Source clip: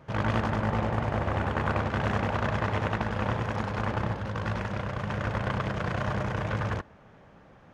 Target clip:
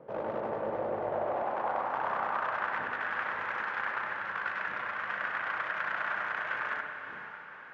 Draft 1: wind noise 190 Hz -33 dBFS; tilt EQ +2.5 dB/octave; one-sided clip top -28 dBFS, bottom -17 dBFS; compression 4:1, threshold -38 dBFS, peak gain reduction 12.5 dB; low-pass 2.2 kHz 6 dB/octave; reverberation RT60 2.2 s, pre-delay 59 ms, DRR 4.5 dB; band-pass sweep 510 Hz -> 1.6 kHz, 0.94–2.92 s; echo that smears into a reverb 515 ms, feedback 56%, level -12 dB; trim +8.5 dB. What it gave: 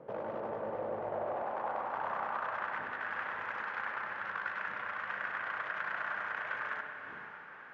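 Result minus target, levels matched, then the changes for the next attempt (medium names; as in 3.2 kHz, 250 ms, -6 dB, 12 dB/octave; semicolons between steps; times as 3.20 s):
compression: peak gain reduction +7 dB; one-sided clip: distortion -4 dB
change: one-sided clip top -37.5 dBFS, bottom -17 dBFS; change: compression 4:1, threshold -30 dBFS, peak gain reduction 6 dB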